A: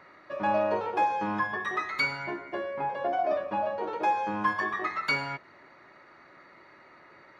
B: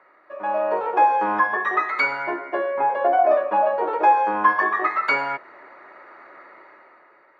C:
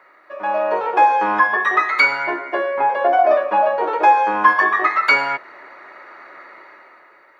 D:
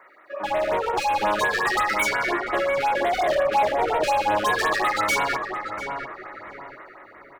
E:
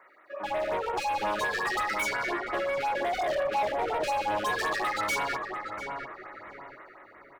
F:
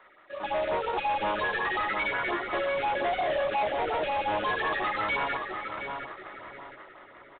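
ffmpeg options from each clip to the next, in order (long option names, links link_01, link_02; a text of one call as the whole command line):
ffmpeg -i in.wav -filter_complex "[0:a]acrossover=split=330 2200:gain=0.0891 1 0.158[link_01][link_02][link_03];[link_01][link_02][link_03]amix=inputs=3:normalize=0,dynaudnorm=framelen=120:gausssize=13:maxgain=11dB" out.wav
ffmpeg -i in.wav -af "highshelf=frequency=2200:gain=10.5,volume=2dB" out.wav
ffmpeg -i in.wav -filter_complex "[0:a]volume=20dB,asoftclip=hard,volume=-20dB,asplit=2[link_01][link_02];[link_02]adelay=693,lowpass=frequency=1200:poles=1,volume=-4dB,asplit=2[link_03][link_04];[link_04]adelay=693,lowpass=frequency=1200:poles=1,volume=0.38,asplit=2[link_05][link_06];[link_06]adelay=693,lowpass=frequency=1200:poles=1,volume=0.38,asplit=2[link_07][link_08];[link_08]adelay=693,lowpass=frequency=1200:poles=1,volume=0.38,asplit=2[link_09][link_10];[link_10]adelay=693,lowpass=frequency=1200:poles=1,volume=0.38[link_11];[link_01][link_03][link_05][link_07][link_09][link_11]amix=inputs=6:normalize=0,afftfilt=real='re*(1-between(b*sr/1024,810*pow(5900/810,0.5+0.5*sin(2*PI*5.6*pts/sr))/1.41,810*pow(5900/810,0.5+0.5*sin(2*PI*5.6*pts/sr))*1.41))':imag='im*(1-between(b*sr/1024,810*pow(5900/810,0.5+0.5*sin(2*PI*5.6*pts/sr))/1.41,810*pow(5900/810,0.5+0.5*sin(2*PI*5.6*pts/sr))*1.41))':win_size=1024:overlap=0.75" out.wav
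ffmpeg -i in.wav -af "asoftclip=type=tanh:threshold=-16dB,volume=-5.5dB" out.wav
ffmpeg -i in.wav -af "aresample=11025,acrusher=bits=2:mode=log:mix=0:aa=0.000001,aresample=44100,aecho=1:1:515:0.168" -ar 8000 -c:a pcm_alaw out.wav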